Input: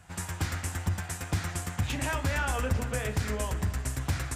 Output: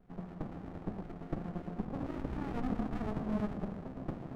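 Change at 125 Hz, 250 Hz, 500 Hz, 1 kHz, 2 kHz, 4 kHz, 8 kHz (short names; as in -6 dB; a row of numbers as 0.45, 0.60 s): -11.5 dB, +1.0 dB, -5.5 dB, -8.5 dB, -19.0 dB, -21.5 dB, under -30 dB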